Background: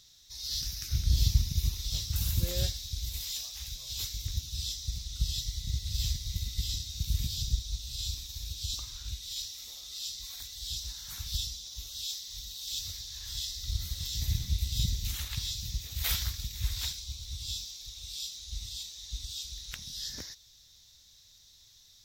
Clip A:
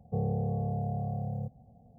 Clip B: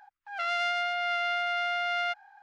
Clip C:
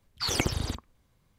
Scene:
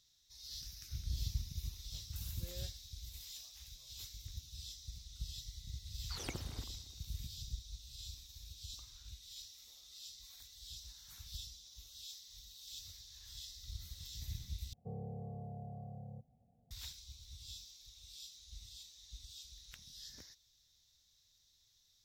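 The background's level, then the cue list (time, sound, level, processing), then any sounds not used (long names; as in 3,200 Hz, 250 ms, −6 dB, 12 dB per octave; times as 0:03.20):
background −13.5 dB
0:05.89: mix in C −16.5 dB + delay that swaps between a low-pass and a high-pass 115 ms, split 850 Hz, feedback 63%, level −14 dB
0:14.73: overwrite with A −14.5 dB
not used: B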